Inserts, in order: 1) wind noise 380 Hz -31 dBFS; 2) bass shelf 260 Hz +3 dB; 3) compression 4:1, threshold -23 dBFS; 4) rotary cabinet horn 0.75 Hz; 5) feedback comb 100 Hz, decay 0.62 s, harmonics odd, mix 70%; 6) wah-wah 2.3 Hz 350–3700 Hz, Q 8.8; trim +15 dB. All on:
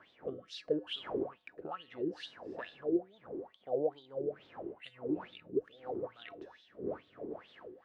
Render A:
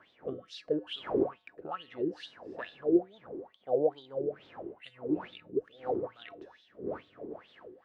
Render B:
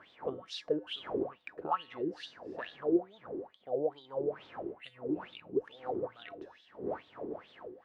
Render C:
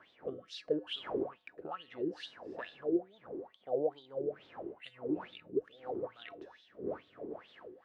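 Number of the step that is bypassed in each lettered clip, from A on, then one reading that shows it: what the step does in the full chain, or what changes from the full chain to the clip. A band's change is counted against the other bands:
3, mean gain reduction 2.0 dB; 4, 1 kHz band +5.5 dB; 2, 125 Hz band -1.5 dB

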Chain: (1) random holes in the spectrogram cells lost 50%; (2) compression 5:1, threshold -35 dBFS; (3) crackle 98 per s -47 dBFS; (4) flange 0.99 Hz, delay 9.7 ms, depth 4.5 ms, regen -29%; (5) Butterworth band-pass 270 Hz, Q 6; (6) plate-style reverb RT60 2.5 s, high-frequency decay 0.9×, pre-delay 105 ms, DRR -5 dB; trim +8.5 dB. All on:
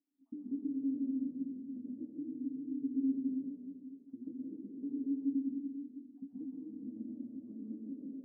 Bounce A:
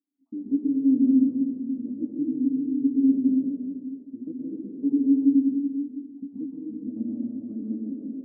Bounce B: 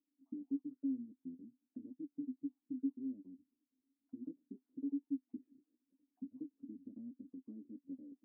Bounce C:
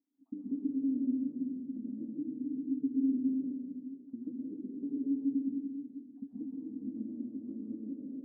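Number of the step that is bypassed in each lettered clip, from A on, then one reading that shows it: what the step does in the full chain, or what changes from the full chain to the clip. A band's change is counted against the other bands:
2, mean gain reduction 10.0 dB; 6, crest factor change +3.5 dB; 4, momentary loudness spread change -2 LU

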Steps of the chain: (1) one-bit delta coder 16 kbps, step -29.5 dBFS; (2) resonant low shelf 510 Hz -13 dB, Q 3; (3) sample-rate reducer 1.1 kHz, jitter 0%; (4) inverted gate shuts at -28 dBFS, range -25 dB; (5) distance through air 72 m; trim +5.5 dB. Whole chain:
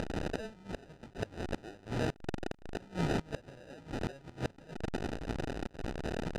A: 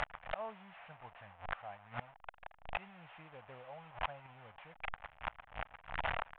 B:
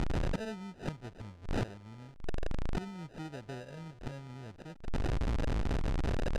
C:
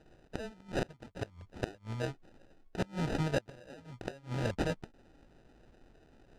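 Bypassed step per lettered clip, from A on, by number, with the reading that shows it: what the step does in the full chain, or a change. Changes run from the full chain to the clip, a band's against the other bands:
3, crest factor change +6.0 dB; 2, 125 Hz band +4.5 dB; 1, crest factor change +4.0 dB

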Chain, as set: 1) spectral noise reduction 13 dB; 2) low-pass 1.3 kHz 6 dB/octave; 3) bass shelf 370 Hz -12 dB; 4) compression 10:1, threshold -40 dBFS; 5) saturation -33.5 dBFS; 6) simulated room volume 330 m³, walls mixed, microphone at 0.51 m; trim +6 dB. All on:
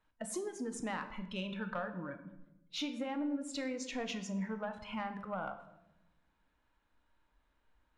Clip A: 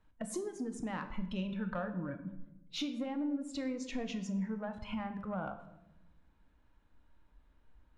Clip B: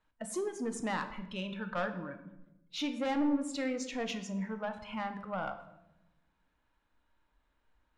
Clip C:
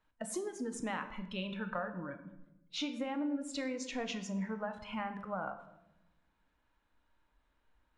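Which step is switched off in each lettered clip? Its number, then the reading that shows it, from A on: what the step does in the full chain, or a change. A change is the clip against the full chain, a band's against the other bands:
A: 3, 125 Hz band +6.0 dB; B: 4, mean gain reduction 3.0 dB; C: 5, distortion -24 dB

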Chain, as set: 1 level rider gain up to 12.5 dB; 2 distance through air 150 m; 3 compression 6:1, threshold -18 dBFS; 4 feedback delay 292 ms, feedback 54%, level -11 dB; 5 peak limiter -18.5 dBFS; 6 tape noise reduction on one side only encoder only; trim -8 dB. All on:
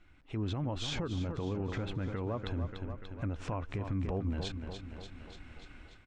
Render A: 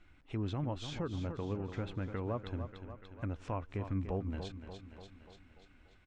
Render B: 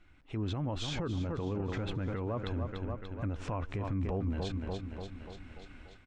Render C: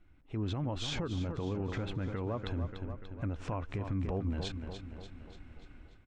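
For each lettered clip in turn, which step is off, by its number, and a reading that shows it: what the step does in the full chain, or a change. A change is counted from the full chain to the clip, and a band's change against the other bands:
1, momentary loudness spread change -1 LU; 3, mean gain reduction 2.5 dB; 6, momentary loudness spread change +1 LU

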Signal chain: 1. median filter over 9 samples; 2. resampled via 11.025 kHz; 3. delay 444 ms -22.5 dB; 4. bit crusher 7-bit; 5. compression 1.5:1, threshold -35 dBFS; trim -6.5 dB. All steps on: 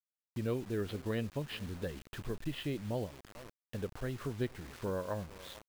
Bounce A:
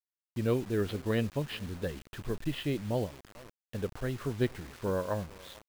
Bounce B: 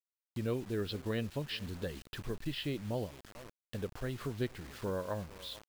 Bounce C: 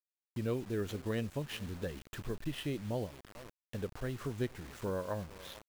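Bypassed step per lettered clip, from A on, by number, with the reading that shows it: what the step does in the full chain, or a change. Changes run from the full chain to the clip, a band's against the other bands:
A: 5, mean gain reduction 3.5 dB; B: 1, 4 kHz band +4.5 dB; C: 2, 8 kHz band +2.0 dB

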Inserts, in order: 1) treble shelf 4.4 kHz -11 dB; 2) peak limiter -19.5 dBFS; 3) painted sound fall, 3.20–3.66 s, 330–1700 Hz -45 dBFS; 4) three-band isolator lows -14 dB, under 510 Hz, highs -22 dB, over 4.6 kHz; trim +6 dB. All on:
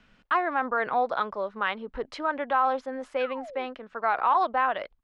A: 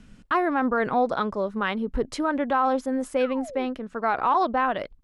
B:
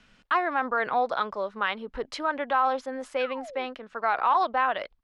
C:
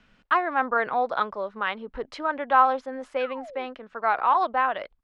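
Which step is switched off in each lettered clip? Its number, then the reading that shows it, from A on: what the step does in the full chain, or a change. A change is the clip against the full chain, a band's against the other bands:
4, 250 Hz band +10.5 dB; 1, 4 kHz band +3.5 dB; 2, crest factor change +4.5 dB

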